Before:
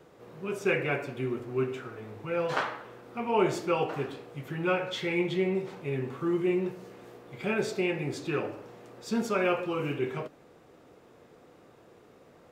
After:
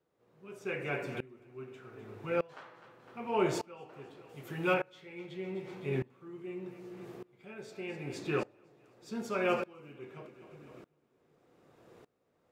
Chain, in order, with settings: 4.29–4.74 high shelf 4100 Hz +10.5 dB; split-band echo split 380 Hz, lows 0.374 s, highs 0.254 s, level -14.5 dB; dB-ramp tremolo swelling 0.83 Hz, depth 25 dB

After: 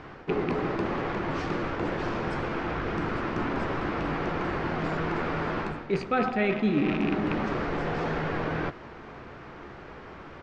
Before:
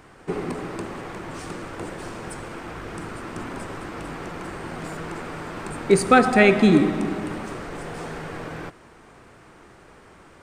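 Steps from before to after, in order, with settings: rattling part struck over -27 dBFS, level -18 dBFS; Bessel low-pass 3400 Hz, order 8; reverse; compressor 5:1, threshold -30 dBFS, peak gain reduction 18 dB; reverse; doubler 14 ms -12.5 dB; gain +5.5 dB

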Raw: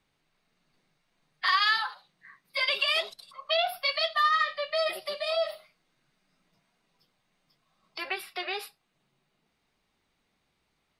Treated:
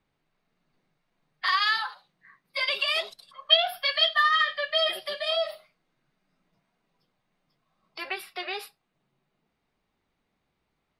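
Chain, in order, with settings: 3.28–5.42 small resonant body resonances 1700/3200 Hz, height 17 dB, ringing for 40 ms; mismatched tape noise reduction decoder only

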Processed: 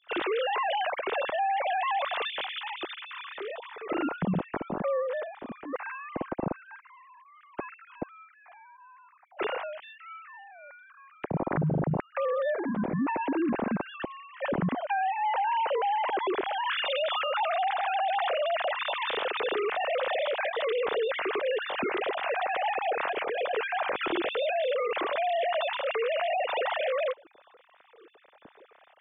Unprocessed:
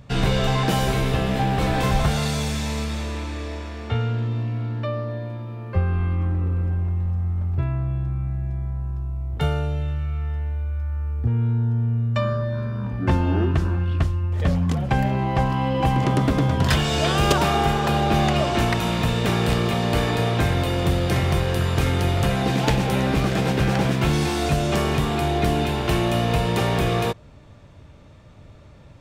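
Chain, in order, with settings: sine-wave speech; 22.95–23.56 negative-ratio compressor -23 dBFS, ratio -0.5; limiter -16.5 dBFS, peak gain reduction 11.5 dB; gain -5.5 dB

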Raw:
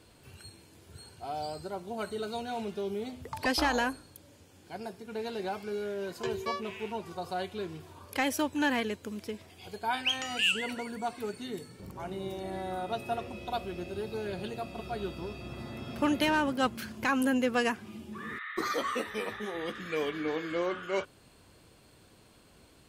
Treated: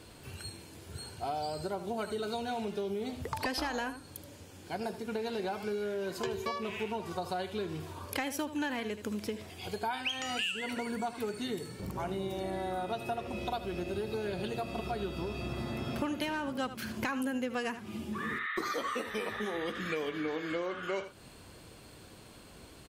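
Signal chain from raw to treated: on a send: echo 77 ms -14 dB; on the sum: compressor 6:1, threshold -38 dBFS, peak gain reduction 14.5 dB; gain +6 dB

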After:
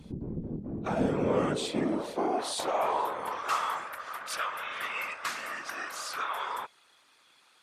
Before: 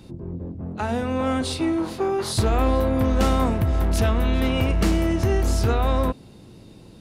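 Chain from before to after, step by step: speed mistake 48 kHz file played as 44.1 kHz; high-pass sweep 150 Hz -> 1300 Hz, 0.1–3.72; whisperiser; gain -6 dB

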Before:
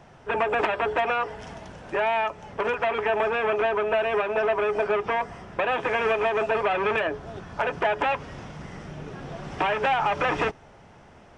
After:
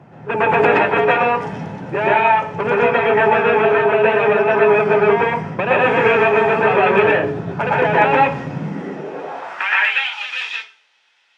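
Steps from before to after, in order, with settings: high-pass sweep 120 Hz -> 3600 Hz, 8.36–10.01; reverb RT60 0.45 s, pre-delay 0.113 s, DRR -5 dB; mismatched tape noise reduction decoder only; gain +1.5 dB

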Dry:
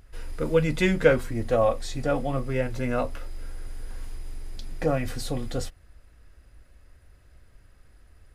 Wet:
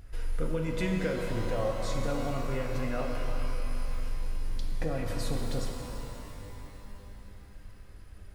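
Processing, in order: low shelf 150 Hz +4.5 dB; compressor, threshold -30 dBFS, peak gain reduction 17 dB; shimmer reverb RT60 3.4 s, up +12 st, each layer -8 dB, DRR 1 dB

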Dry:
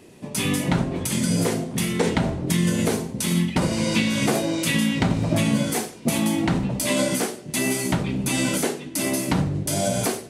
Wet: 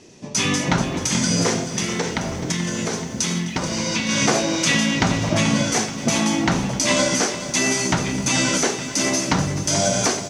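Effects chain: dynamic EQ 1300 Hz, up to +7 dB, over -41 dBFS, Q 0.73; 1.66–4.09 compressor 3:1, threshold -23 dBFS, peak gain reduction 7.5 dB; synth low-pass 6000 Hz, resonance Q 4.5; echo 0.257 s -18.5 dB; lo-fi delay 0.432 s, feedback 55%, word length 8-bit, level -12 dB

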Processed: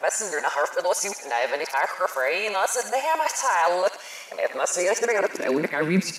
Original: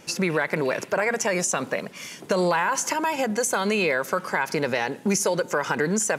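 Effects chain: whole clip reversed; high-pass sweep 670 Hz -> 170 Hz, 4.33–6.09; thin delay 69 ms, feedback 57%, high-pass 1600 Hz, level -6.5 dB; gain -2 dB

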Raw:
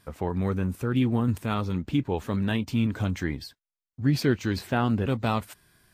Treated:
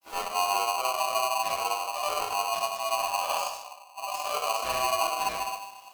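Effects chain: inharmonic rescaling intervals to 109%; HPF 63 Hz; bell 790 Hz -9.5 dB 1.9 oct; compressor 5:1, threshold -41 dBFS, peak gain reduction 17.5 dB; grains, pitch spread up and down by 0 st; shoebox room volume 190 m³, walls mixed, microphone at 2.6 m; polarity switched at an audio rate 890 Hz; gain +4 dB

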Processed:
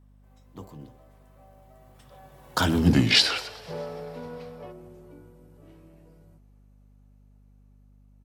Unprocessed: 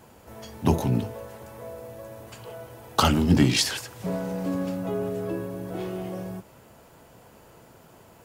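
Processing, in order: Doppler pass-by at 2.85, 49 m/s, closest 11 m; spectral gain 3.1–4.72, 400–5700 Hz +10 dB; on a send: frequency-shifting echo 0.127 s, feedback 59%, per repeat +84 Hz, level -21.5 dB; on the sum: hum 50 Hz, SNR 25 dB

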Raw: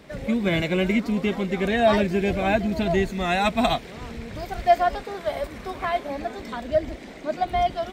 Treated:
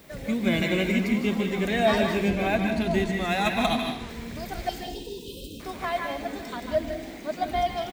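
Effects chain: high shelf 5300 Hz +9.5 dB; added noise violet -55 dBFS; 4.69–5.6 brick-wall FIR band-stop 530–2500 Hz; frequency-shifting echo 99 ms, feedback 61%, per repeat +55 Hz, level -22.5 dB; on a send at -3 dB: reverb RT60 0.65 s, pre-delay 0.142 s; 2.28–4.09 on the sum: decimation joined by straight lines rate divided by 3×; gain -4 dB

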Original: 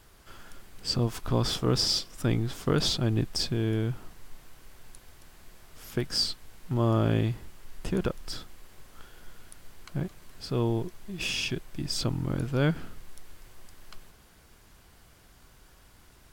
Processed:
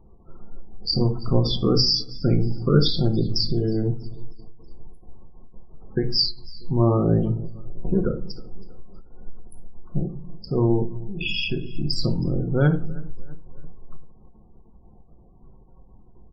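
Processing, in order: Wiener smoothing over 25 samples; companded quantiser 8-bit; high shelf 3500 Hz +2.5 dB; notch 600 Hz, Q 12; feedback echo 0.32 s, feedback 49%, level -21 dB; loudest bins only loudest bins 32; shoebox room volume 290 m³, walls furnished, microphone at 1 m; ending taper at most 120 dB/s; gain +5.5 dB

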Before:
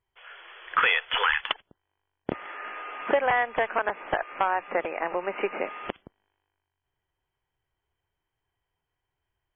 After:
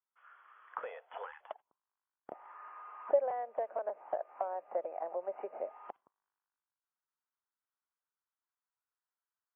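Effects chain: high shelf 2000 Hz -9.5 dB; auto-wah 590–1300 Hz, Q 5.1, down, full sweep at -25.5 dBFS; gain -2 dB

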